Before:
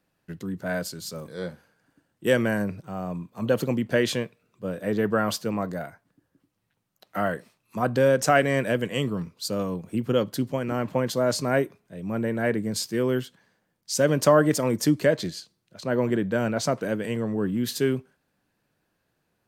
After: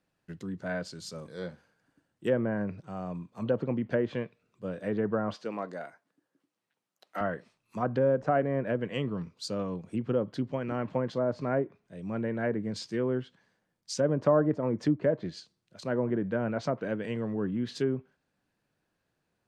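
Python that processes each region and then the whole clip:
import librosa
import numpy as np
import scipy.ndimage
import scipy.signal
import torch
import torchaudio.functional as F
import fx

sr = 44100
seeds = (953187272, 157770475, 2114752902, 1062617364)

y = fx.chain(x, sr, fx.highpass(hz=290.0, slope=12),
    fx.clip_hard(threshold_db=-17.5), at=(5.34, 7.21))
y = scipy.signal.sosfilt(scipy.signal.butter(2, 9800.0, 'lowpass', fs=sr, output='sos'), y)
y = fx.env_lowpass_down(y, sr, base_hz=990.0, full_db=-18.5)
y = y * librosa.db_to_amplitude(-5.0)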